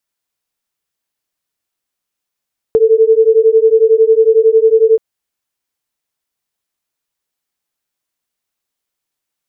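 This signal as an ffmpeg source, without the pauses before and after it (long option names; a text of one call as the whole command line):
ffmpeg -f lavfi -i "aevalsrc='0.355*(sin(2*PI*440*t)+sin(2*PI*451*t))':duration=2.23:sample_rate=44100" out.wav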